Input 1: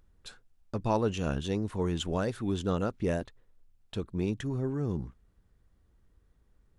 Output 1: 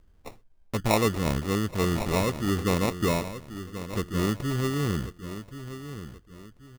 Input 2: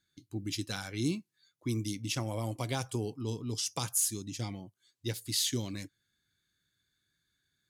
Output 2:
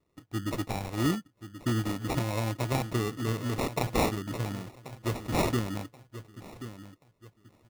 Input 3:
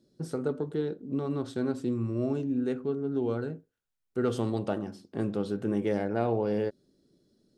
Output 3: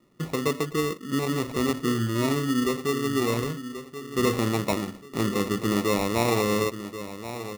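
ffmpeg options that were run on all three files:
-filter_complex "[0:a]asplit=2[a][b];[b]adelay=1082,lowpass=f=1.7k:p=1,volume=-11.5dB,asplit=2[c][d];[d]adelay=1082,lowpass=f=1.7k:p=1,volume=0.33,asplit=2[e][f];[f]adelay=1082,lowpass=f=1.7k:p=1,volume=0.33[g];[a][c][e][g]amix=inputs=4:normalize=0,acrusher=samples=28:mix=1:aa=0.000001,volume=4.5dB"

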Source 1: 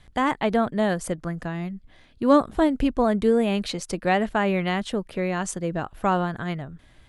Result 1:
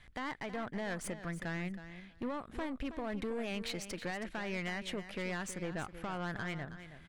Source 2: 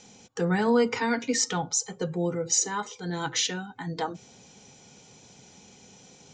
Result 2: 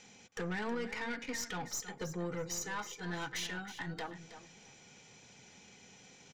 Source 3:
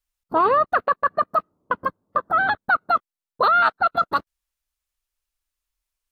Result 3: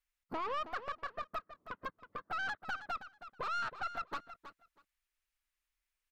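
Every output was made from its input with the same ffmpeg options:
-filter_complex "[0:a]equalizer=f=2k:w=1.1:g=9.5,acompressor=threshold=-21dB:ratio=12,alimiter=limit=-19dB:level=0:latency=1:release=264,aeval=exprs='(tanh(22.4*val(0)+0.45)-tanh(0.45))/22.4':c=same,asplit=2[a][b];[b]aecho=0:1:321|642:0.251|0.0402[c];[a][c]amix=inputs=2:normalize=0,volume=-6dB"

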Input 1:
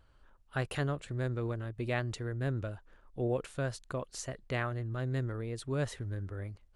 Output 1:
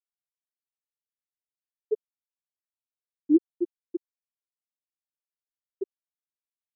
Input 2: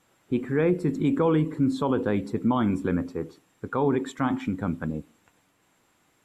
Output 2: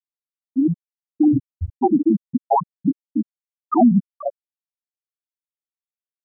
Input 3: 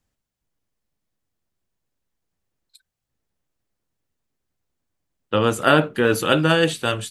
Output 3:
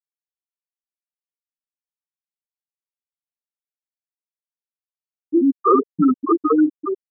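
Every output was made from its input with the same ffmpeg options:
-filter_complex "[0:a]dynaudnorm=f=590:g=5:m=9dB,highpass=f=410:t=q:w=0.5412,highpass=f=410:t=q:w=1.307,lowpass=f=2.9k:t=q:w=0.5176,lowpass=f=2.9k:t=q:w=0.7071,lowpass=f=2.9k:t=q:w=1.932,afreqshift=-190,asplit=2[a][b];[b]acontrast=64,volume=0dB[c];[a][c]amix=inputs=2:normalize=0,asoftclip=type=tanh:threshold=-5dB,afftfilt=real='re*gte(hypot(re,im),1.41)':imag='im*gte(hypot(re,im),1.41)':win_size=1024:overlap=0.75"

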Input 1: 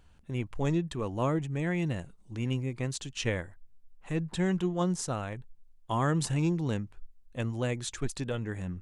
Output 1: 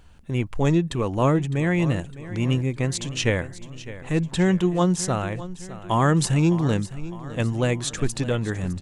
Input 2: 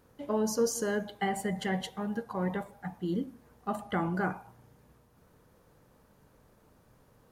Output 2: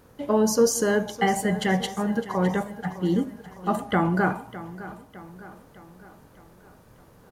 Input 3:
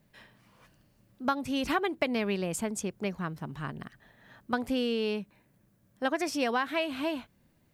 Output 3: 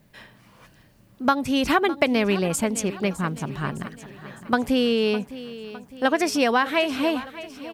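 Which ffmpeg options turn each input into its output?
-af "aecho=1:1:608|1216|1824|2432|3040:0.168|0.0873|0.0454|0.0236|0.0123,volume=8.5dB"

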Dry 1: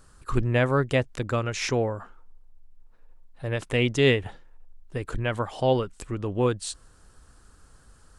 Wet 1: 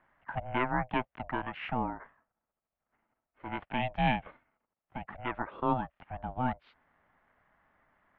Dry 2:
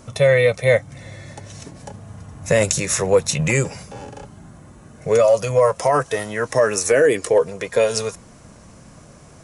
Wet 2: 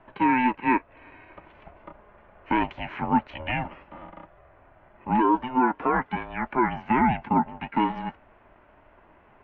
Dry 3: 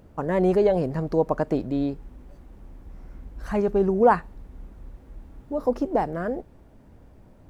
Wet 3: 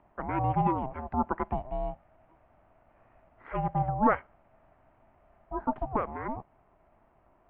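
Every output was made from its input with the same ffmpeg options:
-af "highpass=f=220:t=q:w=0.5412,highpass=f=220:t=q:w=1.307,lowpass=f=2.5k:t=q:w=0.5176,lowpass=f=2.5k:t=q:w=0.7071,lowpass=f=2.5k:t=q:w=1.932,afreqshift=74,aeval=exprs='val(0)*sin(2*PI*320*n/s)':c=same,volume=-3.5dB"

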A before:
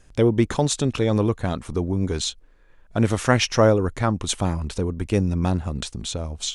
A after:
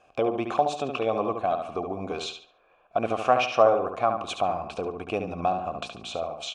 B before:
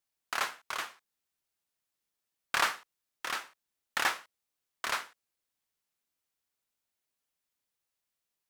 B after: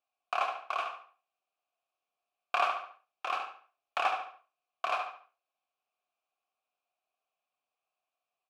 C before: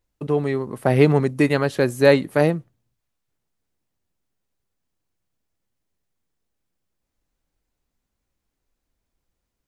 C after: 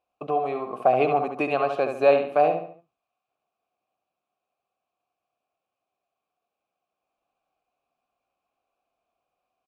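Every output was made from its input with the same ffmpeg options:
-filter_complex "[0:a]asplit=3[a][b][c];[a]bandpass=f=730:t=q:w=8,volume=0dB[d];[b]bandpass=f=1.09k:t=q:w=8,volume=-6dB[e];[c]bandpass=f=2.44k:t=q:w=8,volume=-9dB[f];[d][e][f]amix=inputs=3:normalize=0,asplit=2[g][h];[h]adelay=71,lowpass=f=4.7k:p=1,volume=-6.5dB,asplit=2[i][j];[j]adelay=71,lowpass=f=4.7k:p=1,volume=0.35,asplit=2[k][l];[l]adelay=71,lowpass=f=4.7k:p=1,volume=0.35,asplit=2[m][n];[n]adelay=71,lowpass=f=4.7k:p=1,volume=0.35[o];[g][i][k][m][o]amix=inputs=5:normalize=0,asplit=2[p][q];[q]acompressor=threshold=-43dB:ratio=6,volume=2.5dB[r];[p][r]amix=inputs=2:normalize=0,volume=7dB"

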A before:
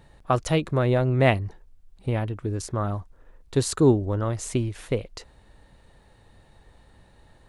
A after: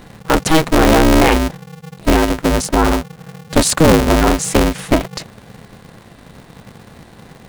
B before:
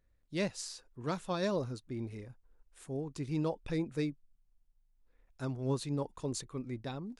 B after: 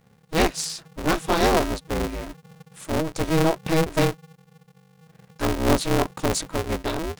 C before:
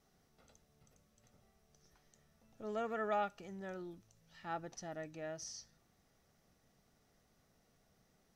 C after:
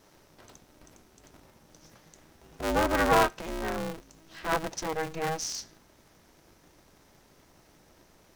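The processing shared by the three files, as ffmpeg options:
-af "alimiter=level_in=14.5dB:limit=-1dB:release=50:level=0:latency=1,aeval=exprs='val(0)*sgn(sin(2*PI*160*n/s))':c=same,volume=-1dB"

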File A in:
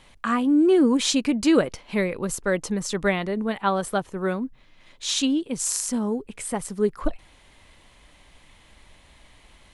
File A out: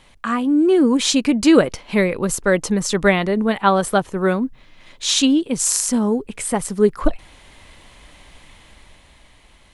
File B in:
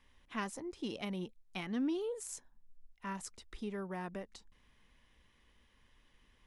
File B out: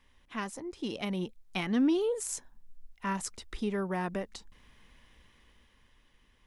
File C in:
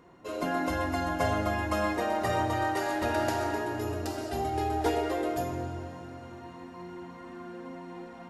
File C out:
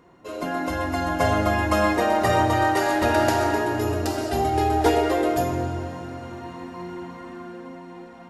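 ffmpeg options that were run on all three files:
-af "dynaudnorm=f=130:g=17:m=6.5dB,volume=2dB"

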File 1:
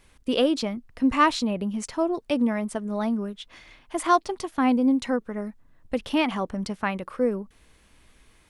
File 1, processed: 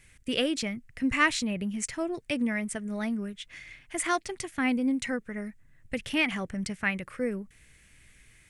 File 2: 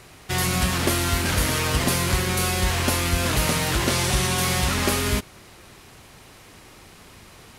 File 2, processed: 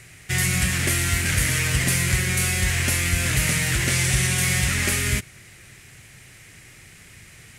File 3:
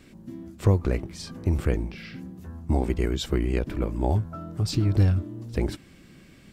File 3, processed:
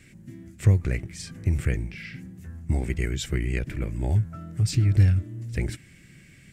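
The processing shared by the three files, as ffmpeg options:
-af "equalizer=f=125:t=o:w=1:g=8,equalizer=f=250:t=o:w=1:g=-4,equalizer=f=500:t=o:w=1:g=-3,equalizer=f=1k:t=o:w=1:g=-11,equalizer=f=2k:t=o:w=1:g=11,equalizer=f=4k:t=o:w=1:g=-4,equalizer=f=8k:t=o:w=1:g=8,volume=-2.5dB"

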